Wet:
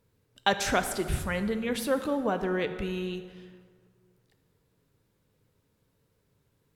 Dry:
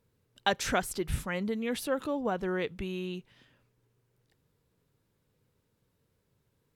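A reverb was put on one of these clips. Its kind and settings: plate-style reverb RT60 1.9 s, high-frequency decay 0.6×, DRR 8.5 dB; trim +2.5 dB

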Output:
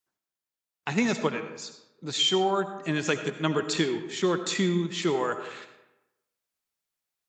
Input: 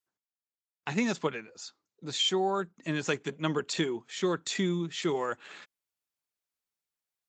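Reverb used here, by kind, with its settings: algorithmic reverb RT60 0.96 s, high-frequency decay 0.6×, pre-delay 40 ms, DRR 9 dB; trim +3.5 dB

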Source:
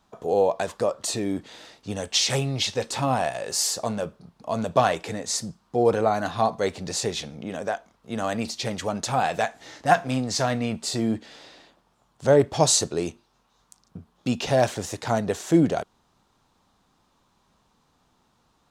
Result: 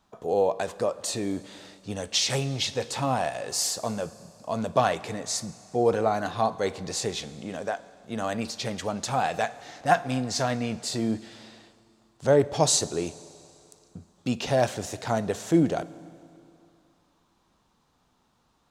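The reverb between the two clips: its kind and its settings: Schroeder reverb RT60 2.6 s, combs from 32 ms, DRR 17 dB; trim -2.5 dB

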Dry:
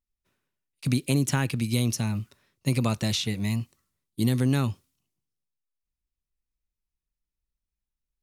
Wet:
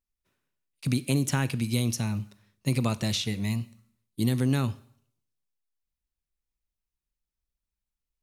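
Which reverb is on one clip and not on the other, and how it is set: Schroeder reverb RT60 0.62 s, combs from 30 ms, DRR 17.5 dB; trim -1.5 dB

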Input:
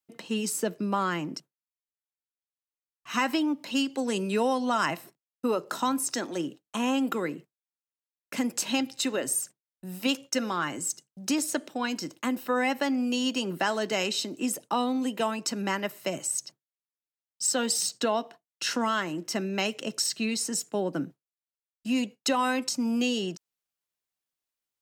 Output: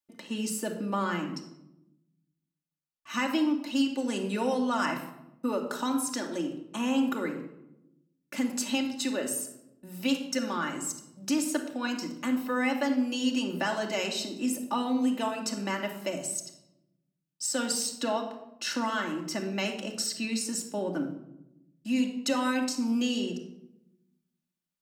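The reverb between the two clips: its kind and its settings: simulated room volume 2800 m³, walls furnished, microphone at 2.5 m; trim -4.5 dB

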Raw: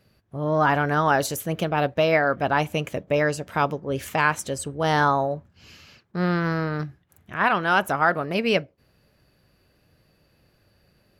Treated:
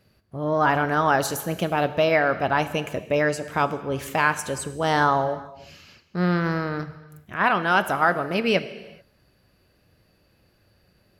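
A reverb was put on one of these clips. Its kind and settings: gated-style reverb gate 460 ms falling, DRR 11.5 dB

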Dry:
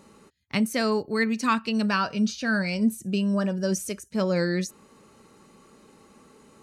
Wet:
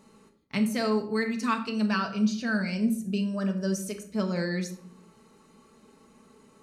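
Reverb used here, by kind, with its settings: simulated room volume 990 m³, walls furnished, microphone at 1.5 m; trim -5.5 dB

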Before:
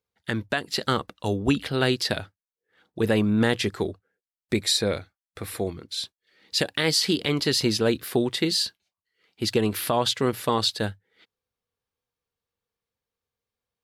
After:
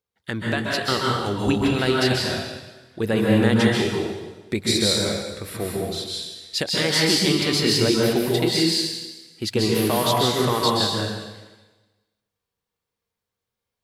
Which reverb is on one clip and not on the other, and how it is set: plate-style reverb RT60 1.2 s, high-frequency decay 1×, pre-delay 120 ms, DRR -3.5 dB; trim -1 dB

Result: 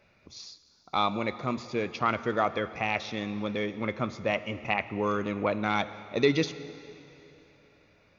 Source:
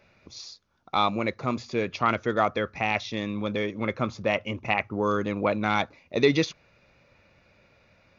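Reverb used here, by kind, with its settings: plate-style reverb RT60 3.1 s, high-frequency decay 1×, DRR 13 dB; trim -3 dB

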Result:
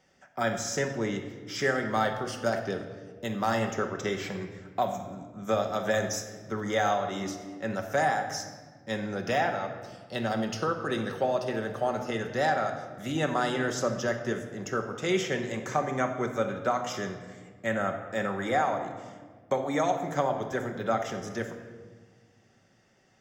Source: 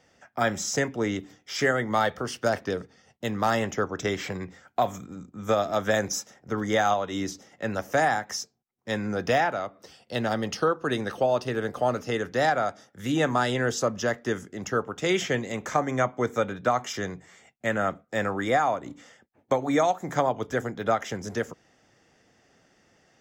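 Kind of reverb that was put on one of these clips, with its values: simulated room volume 1600 m³, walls mixed, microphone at 1.1 m; trim -4.5 dB

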